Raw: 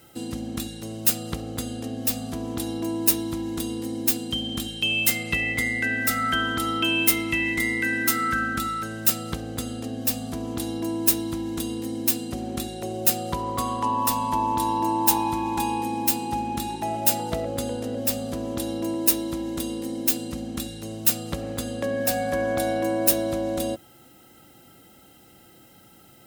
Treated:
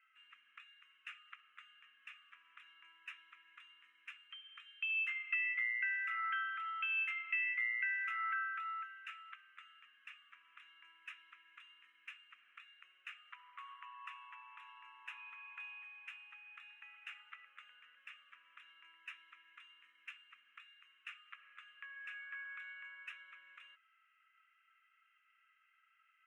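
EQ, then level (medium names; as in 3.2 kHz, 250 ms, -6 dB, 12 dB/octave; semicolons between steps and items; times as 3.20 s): elliptic band-pass 1.2–2.6 kHz, stop band 40 dB; distance through air 110 m; differentiator; +2.5 dB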